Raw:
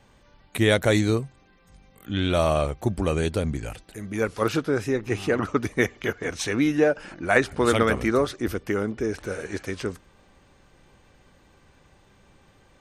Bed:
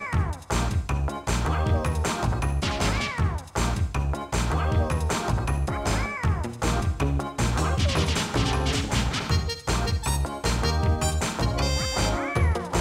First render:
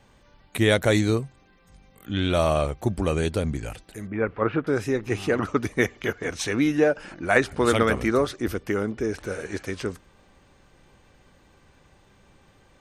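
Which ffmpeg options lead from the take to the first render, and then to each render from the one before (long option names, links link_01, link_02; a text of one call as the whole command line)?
ffmpeg -i in.wav -filter_complex "[0:a]asettb=1/sr,asplit=3[link_01][link_02][link_03];[link_01]atrim=end=4.074[link_04];[link_02]atrim=start=4.07:end=4.67,asetpts=PTS-STARTPTS,afade=type=in:duration=0.004:curve=qsin,afade=type=out:start_time=0.596:duration=0.004:curve=qsin,lowpass=frequency=2300:width=0.5412,lowpass=frequency=2300:width=1.3066[link_05];[link_03]atrim=start=4.666[link_06];[link_04][link_05]acrossfade=duration=0.004:curve1=hsin:curve2=qsin[link_07];[link_07][link_06]acrossfade=duration=0.004:curve1=qsin:curve2=hsin" out.wav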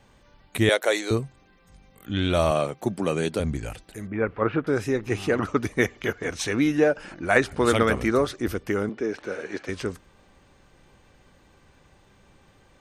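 ffmpeg -i in.wav -filter_complex "[0:a]asettb=1/sr,asplit=3[link_01][link_02][link_03];[link_01]atrim=end=0.694[link_04];[link_02]atrim=start=0.69:end=1.11,asetpts=PTS-STARTPTS,afade=type=in:duration=0.004:curve=qsin,afade=type=out:start_time=0.416:duration=0.004:curve=qsin,highpass=frequency=400:width=0.5412,highpass=frequency=400:width=1.3066[link_05];[link_03]atrim=start=1.106[link_06];[link_04][link_05]acrossfade=duration=0.004:curve1=hsin:curve2=qsin[link_07];[link_07][link_06]acrossfade=duration=0.004:curve1=qsin:curve2=hsin,asettb=1/sr,asplit=3[link_08][link_09][link_10];[link_08]atrim=end=2.514[link_11];[link_09]atrim=start=2.51:end=3.4,asetpts=PTS-STARTPTS,afade=type=in:duration=0.004:curve=qsin,afade=type=out:start_time=0.886:duration=0.004:curve=qsin,highpass=frequency=140:width=0.5412,highpass=frequency=140:width=1.3066[link_12];[link_10]atrim=start=3.396[link_13];[link_11][link_12]acrossfade=duration=0.004:curve1=hsin:curve2=qsin[link_14];[link_14][link_13]acrossfade=duration=0.004:curve1=qsin:curve2=hsin,asettb=1/sr,asplit=3[link_15][link_16][link_17];[link_15]atrim=end=8.894[link_18];[link_16]atrim=start=8.89:end=9.69,asetpts=PTS-STARTPTS,afade=type=in:duration=0.004:curve=qsin,afade=type=out:start_time=0.796:duration=0.004:curve=qsin,acrossover=split=180 5800:gain=0.126 1 0.141[link_19][link_20][link_21];[link_19][link_20][link_21]amix=inputs=3:normalize=0[link_22];[link_17]atrim=start=9.686[link_23];[link_18][link_22]acrossfade=duration=0.004:curve1=hsin:curve2=qsin[link_24];[link_24][link_23]acrossfade=duration=0.004:curve1=qsin:curve2=hsin" out.wav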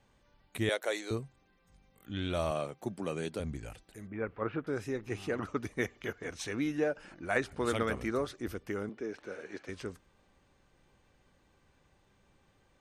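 ffmpeg -i in.wav -af "volume=-11dB" out.wav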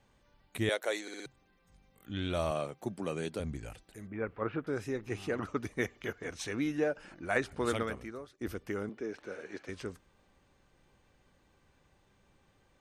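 ffmpeg -i in.wav -filter_complex "[0:a]asplit=6[link_01][link_02][link_03][link_04][link_05][link_06];[link_01]atrim=end=1.082[link_07];[link_02]atrim=start=1.018:end=1.082[link_08];[link_03]atrim=start=1.018:end=1.082[link_09];[link_04]atrim=start=1.018:end=1.082[link_10];[link_05]atrim=start=1.258:end=8.41,asetpts=PTS-STARTPTS,afade=type=out:start_time=6.452:duration=0.7:curve=qua:silence=0.158489[link_11];[link_06]atrim=start=8.41,asetpts=PTS-STARTPTS,afade=type=in:duration=0.004:curve=hsin:silence=0.158489[link_12];[link_07][link_08]acrossfade=duration=0.004:curve1=hsin:curve2=hsin[link_13];[link_13][link_09]acrossfade=duration=0.004:curve1=hsin:curve2=hsin[link_14];[link_14][link_10]acrossfade=duration=0.004:curve1=hsin:curve2=hsin[link_15];[link_11][link_12]concat=n=2:v=0:a=1[link_16];[link_15][link_16]acrossfade=duration=0.004:curve1=hsin:curve2=hsin" out.wav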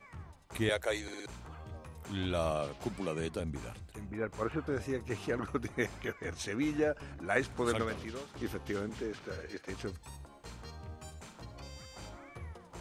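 ffmpeg -i in.wav -i bed.wav -filter_complex "[1:a]volume=-23.5dB[link_01];[0:a][link_01]amix=inputs=2:normalize=0" out.wav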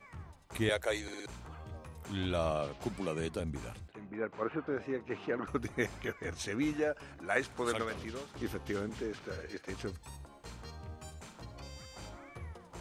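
ffmpeg -i in.wav -filter_complex "[0:a]asettb=1/sr,asplit=3[link_01][link_02][link_03];[link_01]atrim=end=2.364[link_04];[link_02]atrim=start=2.36:end=2.82,asetpts=PTS-STARTPTS,afade=type=in:duration=0.004:curve=qsin,afade=type=out:start_time=0.456:duration=0.004:curve=qsin,equalizer=frequency=12000:width=0.79:gain=-8.5[link_05];[link_03]atrim=start=2.816[link_06];[link_04][link_05]acrossfade=duration=0.004:curve1=hsin:curve2=qsin[link_07];[link_07][link_06]acrossfade=duration=0.004:curve1=qsin:curve2=hsin,asettb=1/sr,asplit=3[link_08][link_09][link_10];[link_08]atrim=end=3.884[link_11];[link_09]atrim=start=3.88:end=5.47,asetpts=PTS-STARTPTS,afade=type=in:duration=0.004:curve=qsin,afade=type=out:start_time=1.586:duration=0.004:curve=qsin,highpass=190,lowpass=2900[link_12];[link_10]atrim=start=5.466[link_13];[link_11][link_12]acrossfade=duration=0.004:curve1=hsin:curve2=qsin[link_14];[link_14][link_13]acrossfade=duration=0.004:curve1=qsin:curve2=hsin,asettb=1/sr,asplit=3[link_15][link_16][link_17];[link_15]atrim=end=6.734[link_18];[link_16]atrim=start=6.73:end=7.95,asetpts=PTS-STARTPTS,afade=type=in:duration=0.004:curve=qsin,afade=type=out:start_time=1.216:duration=0.004:curve=qsin,lowshelf=frequency=250:gain=-8.5[link_19];[link_17]atrim=start=7.946[link_20];[link_18][link_19]acrossfade=duration=0.004:curve1=hsin:curve2=qsin[link_21];[link_21][link_20]acrossfade=duration=0.004:curve1=qsin:curve2=hsin" out.wav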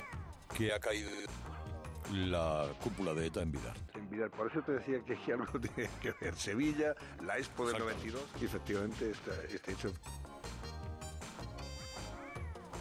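ffmpeg -i in.wav -af "acompressor=mode=upward:threshold=-40dB:ratio=2.5,alimiter=level_in=1.5dB:limit=-24dB:level=0:latency=1:release=33,volume=-1.5dB" out.wav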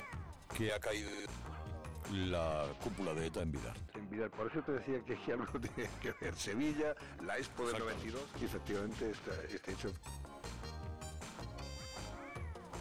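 ffmpeg -i in.wav -af "aeval=exprs='(tanh(31.6*val(0)+0.35)-tanh(0.35))/31.6':channel_layout=same" out.wav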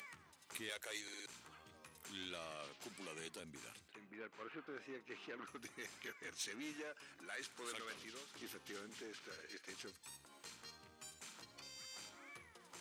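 ffmpeg -i in.wav -af "highpass=390,equalizer=frequency=650:width=0.63:gain=-14.5" out.wav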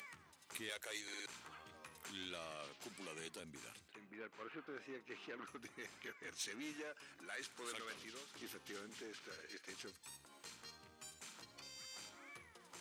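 ffmpeg -i in.wav -filter_complex "[0:a]asettb=1/sr,asplit=3[link_01][link_02][link_03];[link_01]atrim=end=1.084[link_04];[link_02]atrim=start=1.08:end=2.11,asetpts=PTS-STARTPTS,afade=type=in:duration=0.004:curve=qsin,afade=type=out:start_time=1.026:duration=0.004:curve=qsin,equalizer=frequency=1300:width=0.36:gain=5[link_05];[link_03]atrim=start=2.106[link_06];[link_04][link_05]acrossfade=duration=0.004:curve1=hsin:curve2=qsin[link_07];[link_07][link_06]acrossfade=duration=0.004:curve1=qsin:curve2=hsin,asettb=1/sr,asplit=3[link_08][link_09][link_10];[link_08]atrim=end=5.554[link_11];[link_09]atrim=start=5.55:end=6.28,asetpts=PTS-STARTPTS,afade=type=in:duration=0.004:curve=qsin,afade=type=out:start_time=0.726:duration=0.004:curve=qsin,equalizer=frequency=11000:width_type=o:width=2.4:gain=-5.5[link_12];[link_10]atrim=start=6.276[link_13];[link_11][link_12]acrossfade=duration=0.004:curve1=hsin:curve2=qsin[link_14];[link_14][link_13]acrossfade=duration=0.004:curve1=qsin:curve2=hsin" out.wav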